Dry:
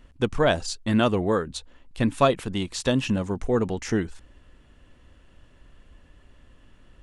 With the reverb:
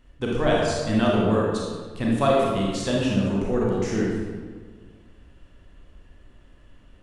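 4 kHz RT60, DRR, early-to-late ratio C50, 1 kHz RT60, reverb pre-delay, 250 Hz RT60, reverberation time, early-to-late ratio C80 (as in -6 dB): 1.0 s, -4.0 dB, -1.5 dB, 1.5 s, 28 ms, 1.9 s, 1.6 s, 1.5 dB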